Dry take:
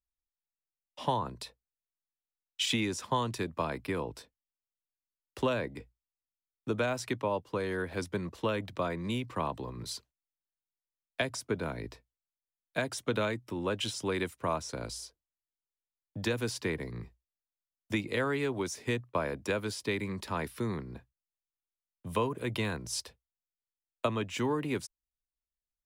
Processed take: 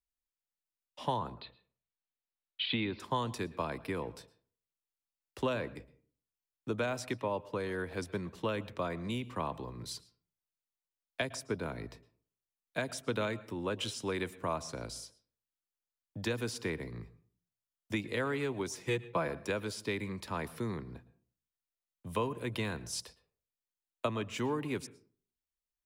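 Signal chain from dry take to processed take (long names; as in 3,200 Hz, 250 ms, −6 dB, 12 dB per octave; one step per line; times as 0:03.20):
0:01.34–0:03.00: Butterworth low-pass 4,400 Hz 96 dB per octave
0:18.73–0:19.28: comb filter 6 ms, depth 77%
on a send: convolution reverb RT60 0.45 s, pre-delay 106 ms, DRR 18.5 dB
on the sum: level −3 dB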